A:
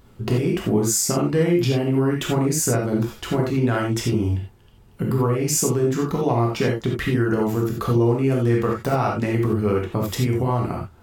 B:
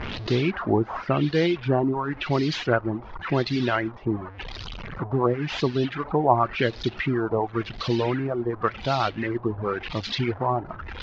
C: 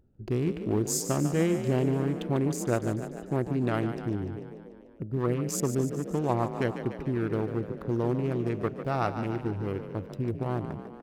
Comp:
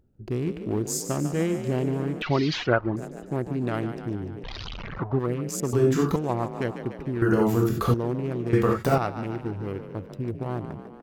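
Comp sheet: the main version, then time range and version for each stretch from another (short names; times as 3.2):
C
2.22–2.96 from B
4.44–5.19 from B
5.73–6.16 from A
7.22–7.94 from A
8.53–8.98 from A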